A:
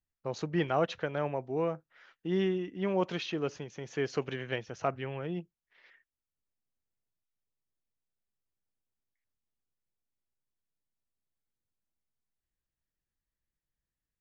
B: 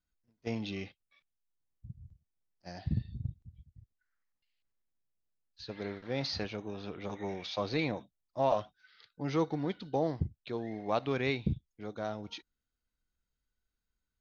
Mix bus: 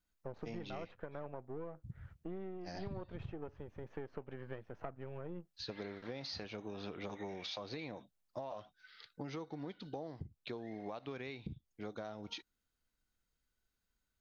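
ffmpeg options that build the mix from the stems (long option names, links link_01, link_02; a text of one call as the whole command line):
ffmpeg -i stem1.wav -i stem2.wav -filter_complex "[0:a]aeval=exprs='if(lt(val(0),0),0.251*val(0),val(0))':channel_layout=same,lowpass=1500,volume=-1dB[link_01];[1:a]lowshelf=frequency=140:gain=-5,alimiter=level_in=4dB:limit=-24dB:level=0:latency=1:release=416,volume=-4dB,volume=3dB[link_02];[link_01][link_02]amix=inputs=2:normalize=0,acompressor=threshold=-40dB:ratio=10" out.wav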